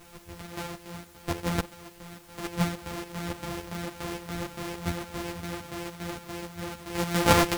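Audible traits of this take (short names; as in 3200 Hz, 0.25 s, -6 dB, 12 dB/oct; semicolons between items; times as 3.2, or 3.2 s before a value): a buzz of ramps at a fixed pitch in blocks of 256 samples; chopped level 3.5 Hz, depth 65%, duty 60%; a quantiser's noise floor 10-bit, dither triangular; a shimmering, thickened sound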